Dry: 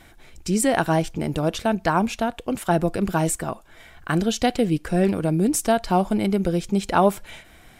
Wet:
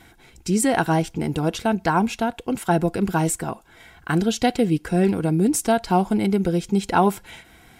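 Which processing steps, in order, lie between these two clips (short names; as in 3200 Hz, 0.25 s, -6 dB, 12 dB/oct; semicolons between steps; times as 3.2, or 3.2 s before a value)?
notch comb 600 Hz; gain +1.5 dB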